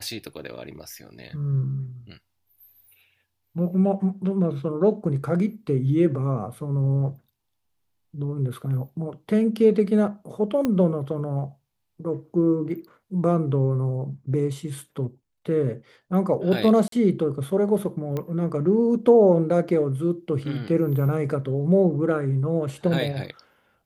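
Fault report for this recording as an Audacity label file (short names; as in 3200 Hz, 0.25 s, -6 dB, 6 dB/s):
10.650000	10.650000	pop -12 dBFS
16.880000	16.920000	gap 43 ms
18.170000	18.170000	pop -17 dBFS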